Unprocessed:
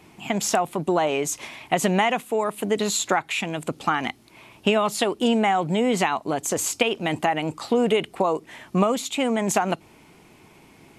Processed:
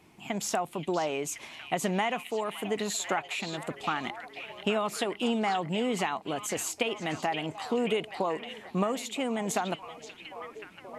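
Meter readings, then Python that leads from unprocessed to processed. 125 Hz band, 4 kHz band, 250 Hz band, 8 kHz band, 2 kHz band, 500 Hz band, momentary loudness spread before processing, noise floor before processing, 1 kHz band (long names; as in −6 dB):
−8.0 dB, −6.5 dB, −8.0 dB, −8.0 dB, −7.0 dB, −8.0 dB, 7 LU, −53 dBFS, −7.5 dB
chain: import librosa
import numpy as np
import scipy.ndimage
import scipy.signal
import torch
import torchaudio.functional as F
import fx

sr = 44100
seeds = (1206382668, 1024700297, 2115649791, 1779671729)

y = fx.echo_stepped(x, sr, ms=528, hz=3600.0, octaves=-0.7, feedback_pct=70, wet_db=-4.0)
y = F.gain(torch.from_numpy(y), -8.0).numpy()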